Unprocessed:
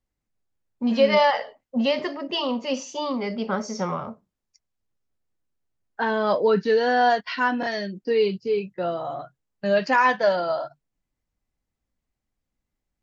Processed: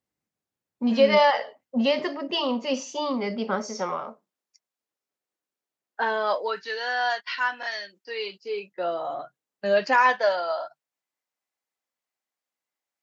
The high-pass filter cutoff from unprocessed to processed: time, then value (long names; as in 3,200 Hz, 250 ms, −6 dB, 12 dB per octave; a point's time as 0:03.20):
0:03.27 140 Hz
0:03.91 380 Hz
0:06.00 380 Hz
0:06.64 1,100 Hz
0:08.07 1,100 Hz
0:09.12 290 Hz
0:09.82 290 Hz
0:10.38 640 Hz